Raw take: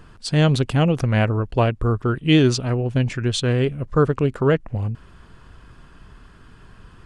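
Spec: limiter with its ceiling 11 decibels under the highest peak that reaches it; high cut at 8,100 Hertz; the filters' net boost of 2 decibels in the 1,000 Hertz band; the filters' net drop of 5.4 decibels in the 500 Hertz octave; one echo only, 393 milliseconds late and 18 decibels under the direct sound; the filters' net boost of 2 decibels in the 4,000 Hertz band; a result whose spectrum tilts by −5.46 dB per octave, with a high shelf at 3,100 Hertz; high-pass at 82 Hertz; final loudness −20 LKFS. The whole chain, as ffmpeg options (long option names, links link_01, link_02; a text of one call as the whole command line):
ffmpeg -i in.wav -af "highpass=82,lowpass=8100,equalizer=frequency=500:width_type=o:gain=-8,equalizer=frequency=1000:width_type=o:gain=5.5,highshelf=frequency=3100:gain=-6,equalizer=frequency=4000:width_type=o:gain=7,alimiter=limit=-15.5dB:level=0:latency=1,aecho=1:1:393:0.126,volume=5.5dB" out.wav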